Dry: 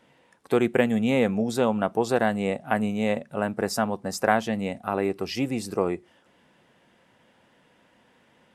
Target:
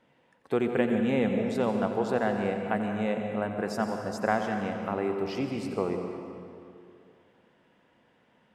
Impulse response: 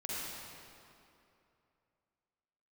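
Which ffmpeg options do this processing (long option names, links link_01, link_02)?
-filter_complex "[0:a]lowpass=frequency=3100:poles=1,asplit=2[link_01][link_02];[1:a]atrim=start_sample=2205,asetrate=48510,aresample=44100,adelay=89[link_03];[link_02][link_03]afir=irnorm=-1:irlink=0,volume=-6dB[link_04];[link_01][link_04]amix=inputs=2:normalize=0,volume=-5dB"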